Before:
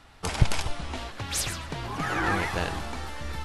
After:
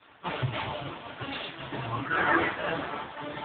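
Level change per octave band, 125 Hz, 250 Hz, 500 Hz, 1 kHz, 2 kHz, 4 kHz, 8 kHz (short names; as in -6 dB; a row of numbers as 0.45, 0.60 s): -6.0 dB, -1.0 dB, +1.5 dB, +1.0 dB, +2.0 dB, -3.5 dB, under -40 dB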